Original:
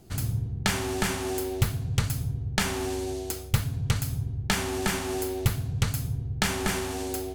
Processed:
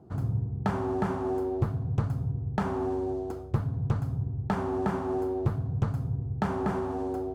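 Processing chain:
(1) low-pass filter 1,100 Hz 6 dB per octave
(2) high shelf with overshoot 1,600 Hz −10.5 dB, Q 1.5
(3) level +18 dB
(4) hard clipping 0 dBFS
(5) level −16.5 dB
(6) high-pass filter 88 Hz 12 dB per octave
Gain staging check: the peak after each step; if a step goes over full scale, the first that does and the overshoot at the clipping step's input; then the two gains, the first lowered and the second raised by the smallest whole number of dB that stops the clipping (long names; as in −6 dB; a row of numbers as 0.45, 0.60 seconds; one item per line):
−11.5, −11.5, +6.5, 0.0, −16.5, −12.5 dBFS
step 3, 6.5 dB
step 3 +11 dB, step 5 −9.5 dB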